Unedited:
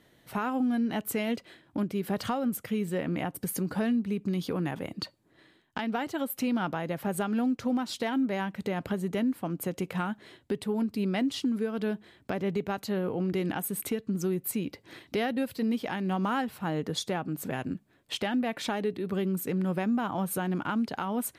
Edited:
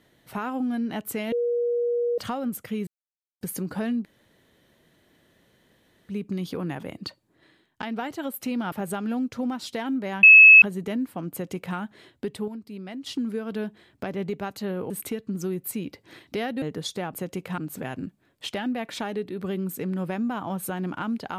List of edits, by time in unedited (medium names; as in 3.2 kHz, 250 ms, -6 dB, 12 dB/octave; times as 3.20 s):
1.32–2.18 s: bleep 478 Hz -21.5 dBFS
2.87–3.41 s: mute
4.05 s: insert room tone 2.04 s
6.68–6.99 s: delete
8.50–8.89 s: bleep 2.59 kHz -6.5 dBFS
9.59–10.03 s: copy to 17.26 s
10.75–11.33 s: gain -9 dB
13.17–13.70 s: delete
15.42–16.74 s: delete